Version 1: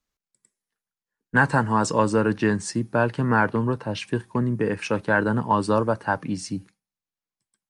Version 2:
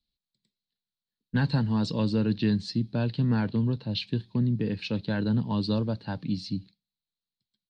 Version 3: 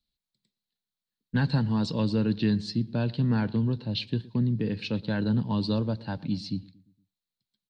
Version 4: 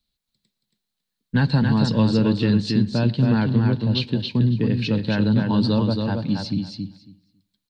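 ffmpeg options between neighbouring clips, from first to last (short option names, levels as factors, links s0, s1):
-af "firequalizer=gain_entry='entry(210,0);entry(350,-9);entry(1200,-20);entry(4100,10);entry(5800,-15);entry(9000,-27)':delay=0.05:min_phase=1"
-filter_complex "[0:a]asplit=2[s0][s1];[s1]adelay=116,lowpass=f=1600:p=1,volume=0.1,asplit=2[s2][s3];[s3]adelay=116,lowpass=f=1600:p=1,volume=0.48,asplit=2[s4][s5];[s5]adelay=116,lowpass=f=1600:p=1,volume=0.48,asplit=2[s6][s7];[s7]adelay=116,lowpass=f=1600:p=1,volume=0.48[s8];[s0][s2][s4][s6][s8]amix=inputs=5:normalize=0"
-af "aecho=1:1:276|552|828:0.596|0.0893|0.0134,volume=2"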